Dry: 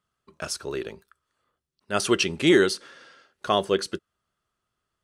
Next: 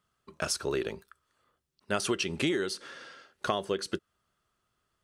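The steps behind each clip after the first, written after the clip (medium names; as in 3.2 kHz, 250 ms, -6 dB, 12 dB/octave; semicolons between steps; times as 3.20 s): compression 16:1, threshold -28 dBFS, peak gain reduction 16 dB; trim +2.5 dB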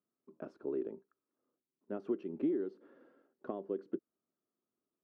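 ladder band-pass 320 Hz, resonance 50%; trim +4 dB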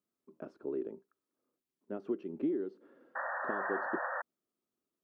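painted sound noise, 3.15–4.22 s, 490–1900 Hz -37 dBFS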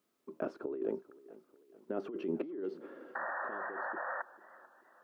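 tone controls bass -8 dB, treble -4 dB; compressor with a negative ratio -44 dBFS, ratio -1; modulated delay 441 ms, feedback 48%, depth 80 cents, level -19.5 dB; trim +6 dB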